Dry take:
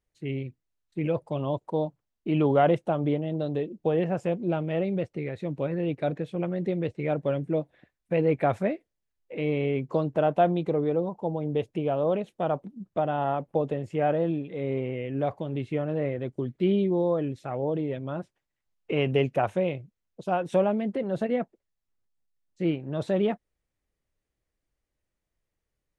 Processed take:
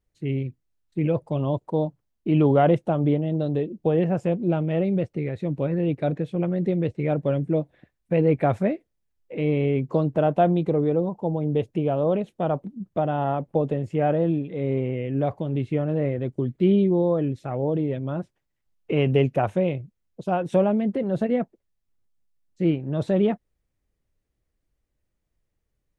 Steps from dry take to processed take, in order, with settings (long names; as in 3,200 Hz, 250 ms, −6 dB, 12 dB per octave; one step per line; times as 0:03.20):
low-shelf EQ 370 Hz +7.5 dB